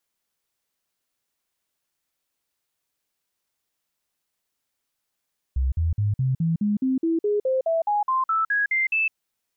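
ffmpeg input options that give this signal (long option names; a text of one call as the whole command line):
ffmpeg -f lavfi -i "aevalsrc='0.112*clip(min(mod(t,0.21),0.16-mod(t,0.21))/0.005,0,1)*sin(2*PI*65.3*pow(2,floor(t/0.21)/3)*mod(t,0.21))':duration=3.57:sample_rate=44100" out.wav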